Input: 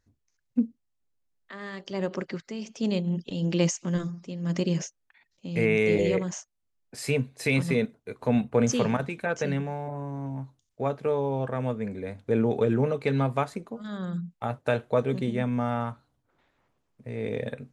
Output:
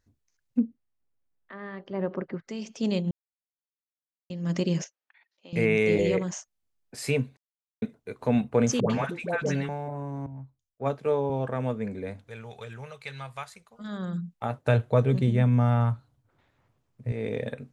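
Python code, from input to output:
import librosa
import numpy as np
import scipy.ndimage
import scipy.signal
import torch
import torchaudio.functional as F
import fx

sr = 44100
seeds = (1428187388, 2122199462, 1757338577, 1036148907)

y = fx.lowpass(x, sr, hz=fx.line((0.59, 2900.0), (2.47, 1300.0)), slope=12, at=(0.59, 2.47), fade=0.02)
y = fx.bandpass_edges(y, sr, low_hz=550.0, high_hz=3700.0, at=(4.84, 5.53))
y = fx.dispersion(y, sr, late='highs', ms=99.0, hz=720.0, at=(8.8, 9.69))
y = fx.band_widen(y, sr, depth_pct=100, at=(10.26, 11.3))
y = fx.tone_stack(y, sr, knobs='10-0-10', at=(12.28, 13.79))
y = fx.peak_eq(y, sr, hz=110.0, db=13.0, octaves=0.77, at=(14.66, 17.12))
y = fx.edit(y, sr, fx.silence(start_s=3.11, length_s=1.19),
    fx.silence(start_s=7.37, length_s=0.45), tone=tone)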